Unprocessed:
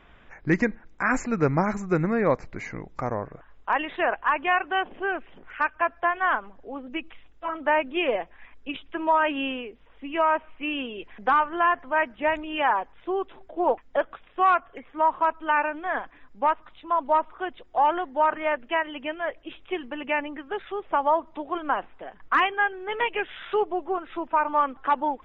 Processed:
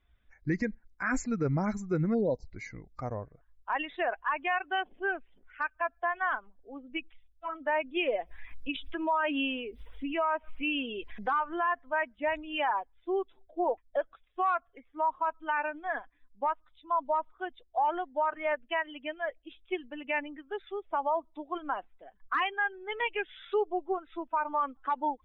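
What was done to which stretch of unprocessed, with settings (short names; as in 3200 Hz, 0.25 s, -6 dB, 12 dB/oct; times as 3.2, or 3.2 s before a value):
2.14–2.45 spectral delete 1000–3200 Hz
8.19–11.67 upward compressor, threshold -23 dBFS
whole clip: per-bin expansion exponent 1.5; limiter -20.5 dBFS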